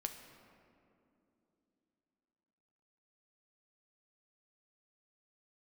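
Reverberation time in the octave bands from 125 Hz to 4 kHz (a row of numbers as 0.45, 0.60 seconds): 3.4, 4.1, 3.4, 2.5, 1.9, 1.3 seconds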